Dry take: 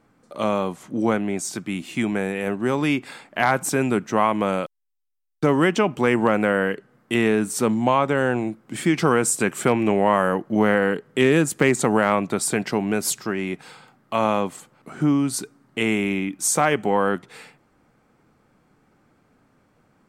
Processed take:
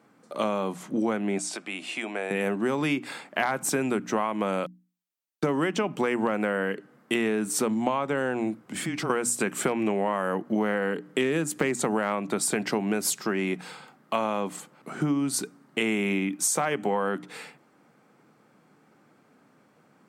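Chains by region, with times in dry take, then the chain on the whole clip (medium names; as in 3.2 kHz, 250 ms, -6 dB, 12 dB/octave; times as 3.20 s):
1.38–2.31 s: compression 2:1, threshold -29 dBFS + cabinet simulation 430–9700 Hz, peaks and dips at 650 Hz +6 dB, 2.6 kHz +4 dB, 6.5 kHz -5 dB
8.60–9.10 s: compression 3:1, threshold -30 dBFS + frequency shift -26 Hz
whole clip: high-pass 140 Hz 24 dB/octave; hum notches 60/120/180/240/300 Hz; compression, threshold -24 dBFS; trim +1.5 dB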